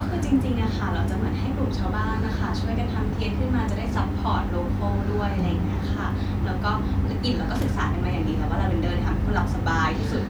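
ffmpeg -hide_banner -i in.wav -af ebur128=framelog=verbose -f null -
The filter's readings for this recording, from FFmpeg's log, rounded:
Integrated loudness:
  I:         -25.0 LUFS
  Threshold: -35.0 LUFS
Loudness range:
  LRA:         1.0 LU
  Threshold: -45.3 LUFS
  LRA low:   -25.6 LUFS
  LRA high:  -24.6 LUFS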